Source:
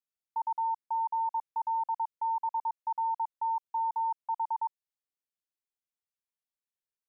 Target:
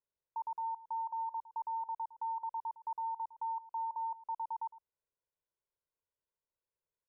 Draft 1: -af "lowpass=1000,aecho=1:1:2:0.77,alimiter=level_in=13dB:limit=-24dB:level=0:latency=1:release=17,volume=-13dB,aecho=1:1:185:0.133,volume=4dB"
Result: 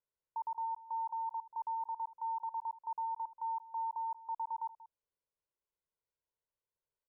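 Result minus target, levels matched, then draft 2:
echo 76 ms late
-af "lowpass=1000,aecho=1:1:2:0.77,alimiter=level_in=13dB:limit=-24dB:level=0:latency=1:release=17,volume=-13dB,aecho=1:1:109:0.133,volume=4dB"

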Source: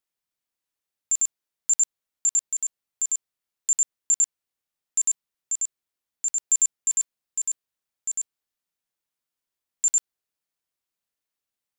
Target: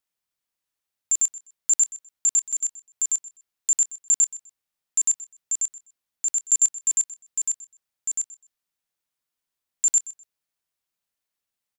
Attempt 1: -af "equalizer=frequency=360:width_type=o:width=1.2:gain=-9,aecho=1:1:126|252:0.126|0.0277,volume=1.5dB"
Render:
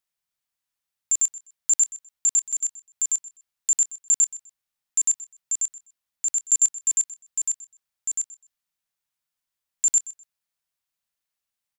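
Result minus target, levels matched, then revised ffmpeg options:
500 Hz band −3.5 dB
-af "equalizer=frequency=360:width_type=o:width=1.2:gain=-2.5,aecho=1:1:126|252:0.126|0.0277,volume=1.5dB"

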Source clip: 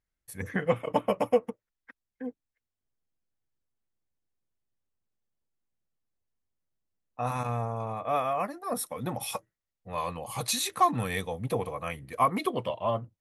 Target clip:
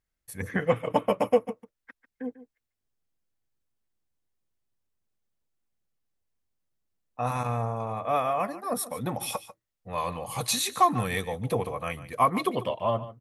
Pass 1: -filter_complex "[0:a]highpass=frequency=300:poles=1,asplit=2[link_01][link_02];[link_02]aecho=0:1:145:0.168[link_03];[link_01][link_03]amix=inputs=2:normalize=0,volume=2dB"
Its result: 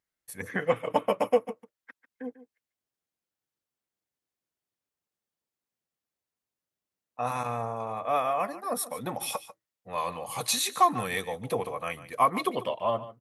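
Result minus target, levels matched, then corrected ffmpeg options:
250 Hz band −3.0 dB
-filter_complex "[0:a]asplit=2[link_01][link_02];[link_02]aecho=0:1:145:0.168[link_03];[link_01][link_03]amix=inputs=2:normalize=0,volume=2dB"

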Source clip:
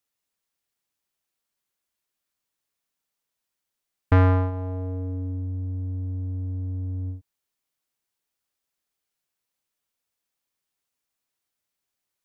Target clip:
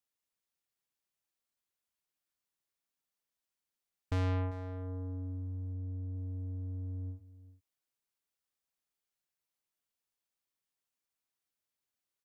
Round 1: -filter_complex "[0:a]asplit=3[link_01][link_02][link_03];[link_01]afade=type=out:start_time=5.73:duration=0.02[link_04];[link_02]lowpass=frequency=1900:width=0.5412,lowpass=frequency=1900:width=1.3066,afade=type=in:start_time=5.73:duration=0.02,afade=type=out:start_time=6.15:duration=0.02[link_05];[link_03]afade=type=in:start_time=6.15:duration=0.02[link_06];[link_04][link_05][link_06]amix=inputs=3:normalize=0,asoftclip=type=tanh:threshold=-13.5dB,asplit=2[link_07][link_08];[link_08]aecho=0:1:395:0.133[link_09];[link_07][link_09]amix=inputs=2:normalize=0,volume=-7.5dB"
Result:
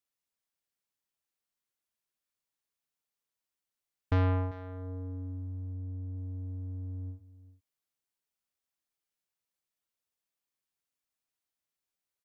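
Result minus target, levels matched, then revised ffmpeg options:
soft clipping: distortion −11 dB
-filter_complex "[0:a]asplit=3[link_01][link_02][link_03];[link_01]afade=type=out:start_time=5.73:duration=0.02[link_04];[link_02]lowpass=frequency=1900:width=0.5412,lowpass=frequency=1900:width=1.3066,afade=type=in:start_time=5.73:duration=0.02,afade=type=out:start_time=6.15:duration=0.02[link_05];[link_03]afade=type=in:start_time=6.15:duration=0.02[link_06];[link_04][link_05][link_06]amix=inputs=3:normalize=0,asoftclip=type=tanh:threshold=-22dB,asplit=2[link_07][link_08];[link_08]aecho=0:1:395:0.133[link_09];[link_07][link_09]amix=inputs=2:normalize=0,volume=-7.5dB"

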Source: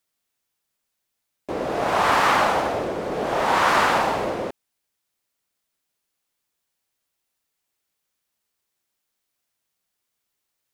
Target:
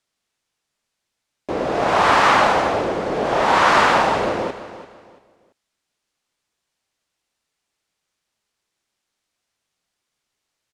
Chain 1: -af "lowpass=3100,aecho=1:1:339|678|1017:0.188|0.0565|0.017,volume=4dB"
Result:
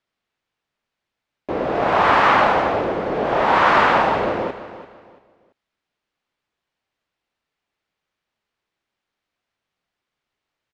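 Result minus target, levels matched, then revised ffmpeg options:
8,000 Hz band −12.0 dB
-af "lowpass=7600,aecho=1:1:339|678|1017:0.188|0.0565|0.017,volume=4dB"

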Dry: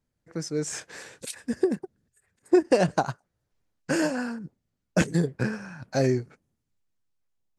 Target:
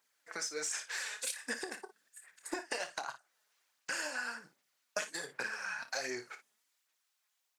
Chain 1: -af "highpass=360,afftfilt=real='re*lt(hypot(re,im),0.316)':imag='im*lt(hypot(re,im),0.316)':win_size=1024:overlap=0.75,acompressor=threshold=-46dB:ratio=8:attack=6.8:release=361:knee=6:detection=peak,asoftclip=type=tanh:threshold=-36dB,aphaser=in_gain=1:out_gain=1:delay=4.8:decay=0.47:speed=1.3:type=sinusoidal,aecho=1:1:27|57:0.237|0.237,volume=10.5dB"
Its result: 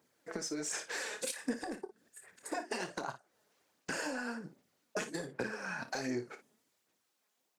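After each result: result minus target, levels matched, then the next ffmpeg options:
soft clipping: distortion +19 dB; 500 Hz band +3.5 dB
-af "highpass=360,afftfilt=real='re*lt(hypot(re,im),0.316)':imag='im*lt(hypot(re,im),0.316)':win_size=1024:overlap=0.75,acompressor=threshold=-46dB:ratio=8:attack=6.8:release=361:knee=6:detection=peak,asoftclip=type=tanh:threshold=-24dB,aphaser=in_gain=1:out_gain=1:delay=4.8:decay=0.47:speed=1.3:type=sinusoidal,aecho=1:1:27|57:0.237|0.237,volume=10.5dB"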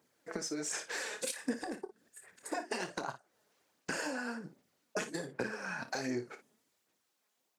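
500 Hz band +3.5 dB
-af "highpass=1200,afftfilt=real='re*lt(hypot(re,im),0.316)':imag='im*lt(hypot(re,im),0.316)':win_size=1024:overlap=0.75,acompressor=threshold=-46dB:ratio=8:attack=6.8:release=361:knee=6:detection=peak,asoftclip=type=tanh:threshold=-24dB,aphaser=in_gain=1:out_gain=1:delay=4.8:decay=0.47:speed=1.3:type=sinusoidal,aecho=1:1:27|57:0.237|0.237,volume=10.5dB"

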